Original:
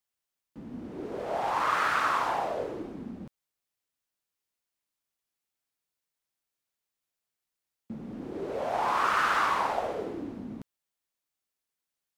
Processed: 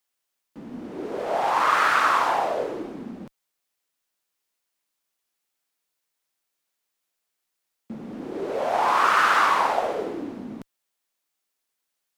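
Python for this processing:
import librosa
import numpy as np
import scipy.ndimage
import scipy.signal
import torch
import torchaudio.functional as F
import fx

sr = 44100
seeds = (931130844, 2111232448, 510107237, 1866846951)

y = fx.peak_eq(x, sr, hz=61.0, db=-13.5, octaves=2.5)
y = y * 10.0 ** (7.0 / 20.0)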